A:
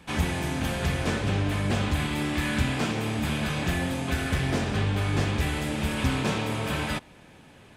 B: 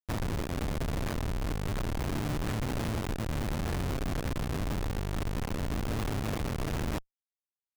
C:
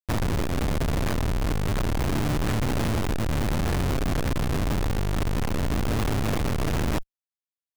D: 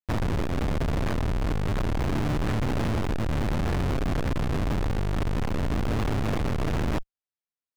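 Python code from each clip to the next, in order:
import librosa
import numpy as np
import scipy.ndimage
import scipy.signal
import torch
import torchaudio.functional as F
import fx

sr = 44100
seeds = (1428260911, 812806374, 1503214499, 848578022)

y1 = fx.cycle_switch(x, sr, every=2, mode='muted')
y1 = fx.schmitt(y1, sr, flips_db=-28.0)
y2 = fx.leveller(y1, sr, passes=5)
y2 = y2 * 10.0 ** (2.0 / 20.0)
y3 = fx.lowpass(y2, sr, hz=3500.0, slope=6)
y3 = y3 * 10.0 ** (-1.0 / 20.0)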